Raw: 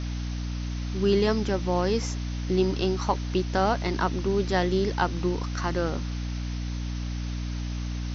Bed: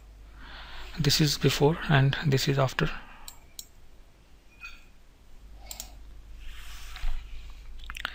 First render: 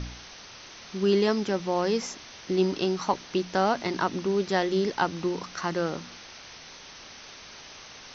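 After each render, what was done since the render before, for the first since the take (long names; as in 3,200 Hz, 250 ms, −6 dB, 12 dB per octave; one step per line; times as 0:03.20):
hum removal 60 Hz, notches 5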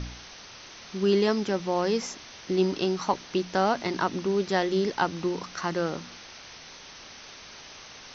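no processing that can be heard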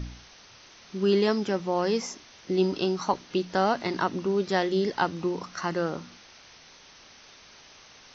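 noise reduction from a noise print 6 dB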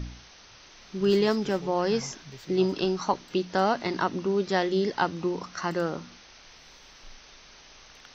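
mix in bed −21 dB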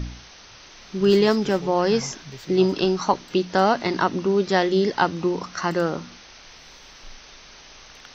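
level +5.5 dB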